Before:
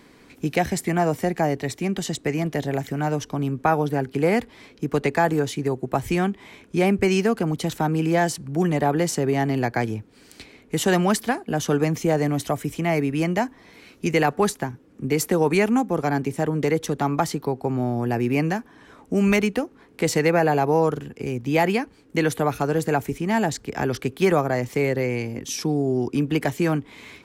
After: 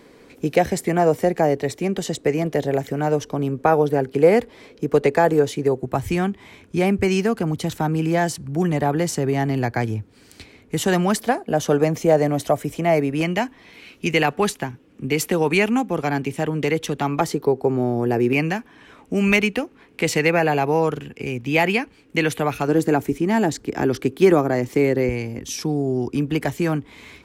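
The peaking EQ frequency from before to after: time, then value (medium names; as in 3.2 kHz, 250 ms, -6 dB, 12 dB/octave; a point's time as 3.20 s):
peaking EQ +8.5 dB 0.8 oct
490 Hz
from 5.83 s 89 Hz
from 11.16 s 590 Hz
from 13.21 s 2.8 kHz
from 17.21 s 420 Hz
from 18.33 s 2.6 kHz
from 22.68 s 320 Hz
from 25.09 s 63 Hz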